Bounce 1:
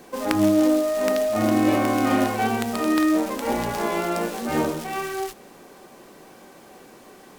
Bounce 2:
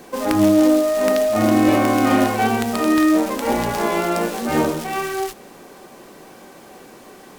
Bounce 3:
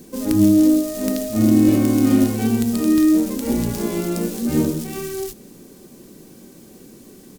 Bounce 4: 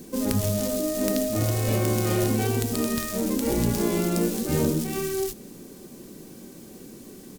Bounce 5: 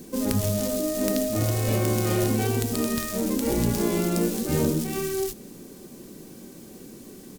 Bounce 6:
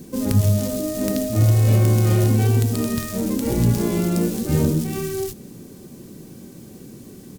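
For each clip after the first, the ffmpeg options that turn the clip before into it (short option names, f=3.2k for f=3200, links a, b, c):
-af "apsyclip=11.5dB,volume=-7dB"
-af "firequalizer=gain_entry='entry(230,0);entry(730,-20);entry(4200,-8);entry(6700,-4);entry(15000,-1)':delay=0.05:min_phase=1,volume=4.5dB"
-af "afftfilt=real='re*lt(hypot(re,im),0.891)':imag='im*lt(hypot(re,im),0.891)':win_size=1024:overlap=0.75"
-af anull
-af "equalizer=f=110:t=o:w=1.5:g=11"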